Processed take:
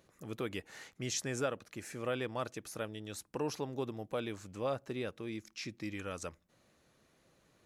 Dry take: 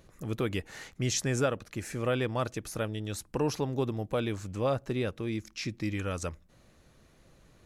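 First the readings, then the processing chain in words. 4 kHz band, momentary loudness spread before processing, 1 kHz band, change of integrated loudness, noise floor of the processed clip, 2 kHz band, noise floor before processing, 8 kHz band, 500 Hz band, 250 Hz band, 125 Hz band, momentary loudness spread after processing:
-5.5 dB, 8 LU, -5.5 dB, -7.0 dB, -71 dBFS, -5.5 dB, -62 dBFS, -5.5 dB, -6.5 dB, -8.0 dB, -12.0 dB, 8 LU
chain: HPF 220 Hz 6 dB/oct; gain -5.5 dB

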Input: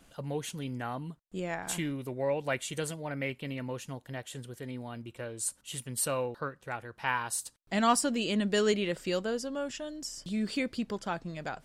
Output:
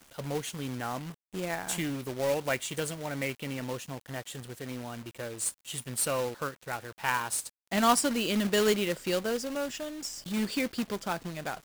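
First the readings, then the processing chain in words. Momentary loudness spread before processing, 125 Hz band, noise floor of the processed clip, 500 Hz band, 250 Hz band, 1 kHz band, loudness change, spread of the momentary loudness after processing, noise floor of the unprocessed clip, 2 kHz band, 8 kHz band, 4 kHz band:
13 LU, 0.0 dB, -68 dBFS, +1.5 dB, +1.0 dB, +1.5 dB, +2.0 dB, 14 LU, -64 dBFS, +2.0 dB, +2.5 dB, +3.0 dB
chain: low shelf 120 Hz -4 dB; companded quantiser 4-bit; gain +1.5 dB

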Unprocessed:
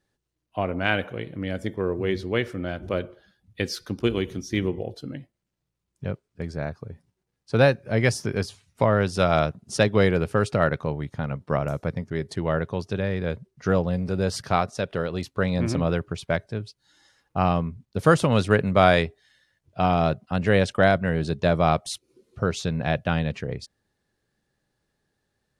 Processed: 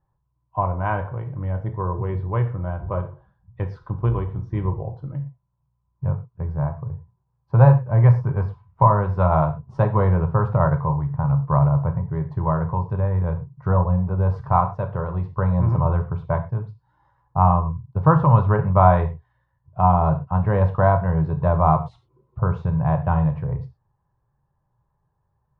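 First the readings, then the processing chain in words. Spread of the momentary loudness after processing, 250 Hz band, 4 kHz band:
14 LU, +0.5 dB, under -20 dB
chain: synth low-pass 990 Hz, resonance Q 8.7; resonant low shelf 180 Hz +10.5 dB, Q 3; non-linear reverb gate 0.14 s falling, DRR 5.5 dB; gain -4.5 dB

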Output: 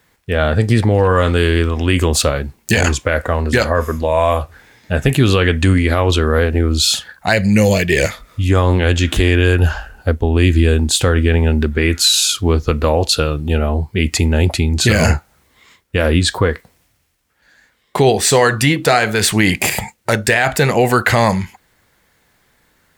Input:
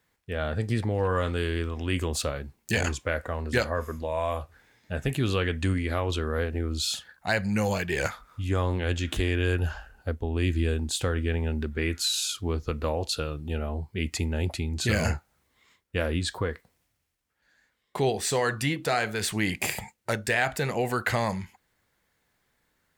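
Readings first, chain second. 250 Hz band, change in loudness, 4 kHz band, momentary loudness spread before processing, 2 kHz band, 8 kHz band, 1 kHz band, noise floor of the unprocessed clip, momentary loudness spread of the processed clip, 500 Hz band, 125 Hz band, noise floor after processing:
+14.0 dB, +13.5 dB, +14.0 dB, 7 LU, +12.5 dB, +14.5 dB, +13.0 dB, -74 dBFS, 6 LU, +13.5 dB, +14.0 dB, -60 dBFS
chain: spectral gain 7.33–8.49, 690–1700 Hz -9 dB; maximiser +15.5 dB; gain -1 dB

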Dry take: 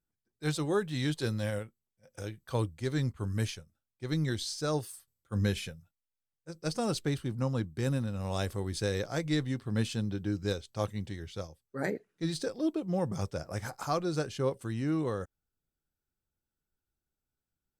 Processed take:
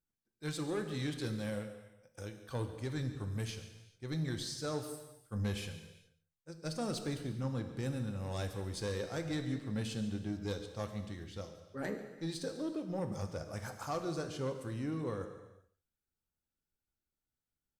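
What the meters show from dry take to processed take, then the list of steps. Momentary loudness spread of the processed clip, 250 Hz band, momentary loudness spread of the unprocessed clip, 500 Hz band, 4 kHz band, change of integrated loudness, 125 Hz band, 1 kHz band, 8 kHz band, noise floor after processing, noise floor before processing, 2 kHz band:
10 LU, -5.5 dB, 9 LU, -6.0 dB, -5.5 dB, -6.0 dB, -6.0 dB, -6.0 dB, -5.0 dB, under -85 dBFS, under -85 dBFS, -6.0 dB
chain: soft clip -24.5 dBFS, distortion -17 dB; echo 0.142 s -17.5 dB; non-linear reverb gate 0.45 s falling, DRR 6.5 dB; gain -5 dB

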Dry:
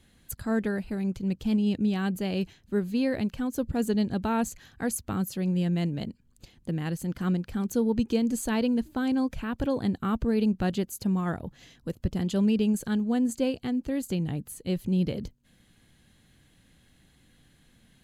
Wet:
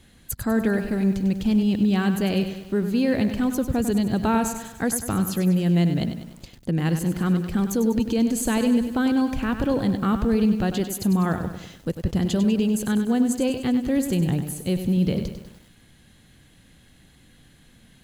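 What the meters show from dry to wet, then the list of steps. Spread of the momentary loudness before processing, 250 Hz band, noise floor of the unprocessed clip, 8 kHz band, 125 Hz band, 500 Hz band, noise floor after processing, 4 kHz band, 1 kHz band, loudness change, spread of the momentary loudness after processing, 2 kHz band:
8 LU, +5.5 dB, -62 dBFS, +7.5 dB, +6.5 dB, +4.5 dB, -54 dBFS, +6.0 dB, +6.0 dB, +5.5 dB, 7 LU, +6.0 dB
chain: limiter -21 dBFS, peak gain reduction 7 dB; lo-fi delay 98 ms, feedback 55%, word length 9-bit, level -9 dB; gain +7 dB

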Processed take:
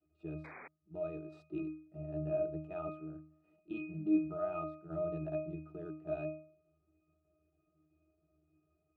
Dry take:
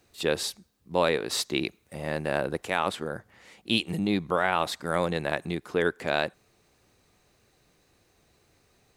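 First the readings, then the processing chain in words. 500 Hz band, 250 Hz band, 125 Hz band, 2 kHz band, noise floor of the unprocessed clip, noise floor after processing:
-10.5 dB, -6.5 dB, -8.5 dB, -24.0 dB, -67 dBFS, -79 dBFS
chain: block floating point 5-bit; bell 440 Hz +11.5 dB 2.1 oct; level quantiser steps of 10 dB; octave resonator D#, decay 0.48 s; painted sound noise, 0.44–0.68, 230–2500 Hz -52 dBFS; gain +1 dB

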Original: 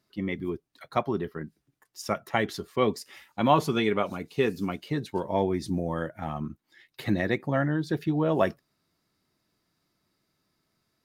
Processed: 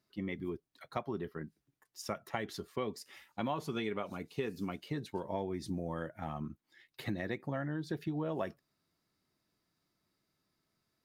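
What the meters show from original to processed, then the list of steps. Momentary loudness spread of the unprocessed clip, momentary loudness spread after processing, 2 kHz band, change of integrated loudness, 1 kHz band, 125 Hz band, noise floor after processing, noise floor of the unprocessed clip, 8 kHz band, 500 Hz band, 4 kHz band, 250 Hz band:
12 LU, 10 LU, -11.0 dB, -11.0 dB, -12.5 dB, -10.0 dB, -83 dBFS, -77 dBFS, -7.5 dB, -11.5 dB, -10.0 dB, -10.0 dB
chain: compressor 4:1, threshold -27 dBFS, peak gain reduction 11 dB; gain -6 dB

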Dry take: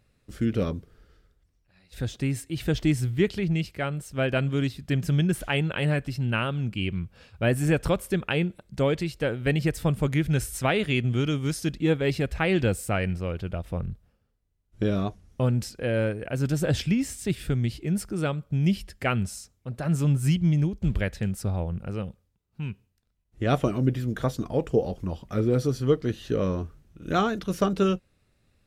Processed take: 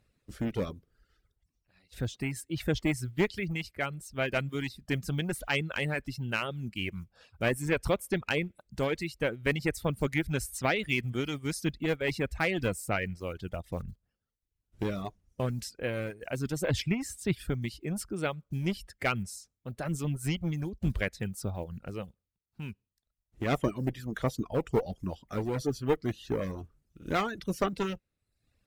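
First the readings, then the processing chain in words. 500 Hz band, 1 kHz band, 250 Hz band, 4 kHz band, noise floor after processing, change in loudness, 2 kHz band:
-5.0 dB, -3.5 dB, -7.0 dB, -3.5 dB, -84 dBFS, -6.0 dB, -1.5 dB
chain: block floating point 7-bit; one-sided clip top -23 dBFS; dynamic EQ 2100 Hz, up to +6 dB, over -48 dBFS, Q 3.6; reverb removal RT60 0.71 s; harmonic-percussive split percussive +6 dB; gain -8 dB

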